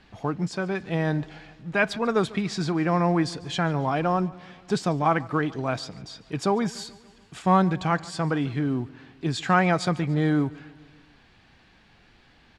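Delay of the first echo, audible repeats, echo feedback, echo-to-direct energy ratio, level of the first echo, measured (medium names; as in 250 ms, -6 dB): 144 ms, 3, 59%, -19.5 dB, -21.5 dB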